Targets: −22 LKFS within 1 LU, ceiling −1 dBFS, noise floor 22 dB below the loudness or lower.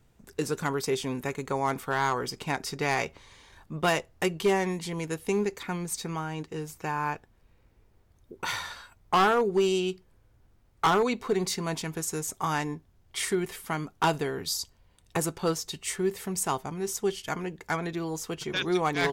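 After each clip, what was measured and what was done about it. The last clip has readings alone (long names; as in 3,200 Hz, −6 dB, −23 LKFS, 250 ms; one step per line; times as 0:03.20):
share of clipped samples 0.5%; peaks flattened at −17.5 dBFS; integrated loudness −29.5 LKFS; sample peak −17.5 dBFS; target loudness −22.0 LKFS
→ clipped peaks rebuilt −17.5 dBFS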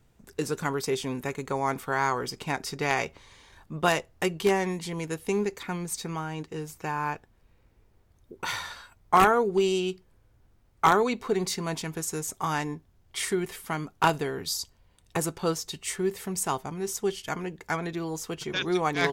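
share of clipped samples 0.0%; integrated loudness −29.0 LKFS; sample peak −8.5 dBFS; target loudness −22.0 LKFS
→ level +7 dB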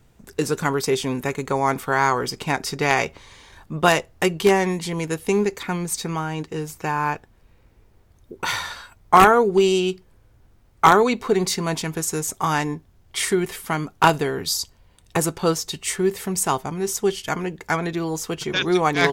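integrated loudness −22.0 LKFS; sample peak −1.5 dBFS; background noise floor −56 dBFS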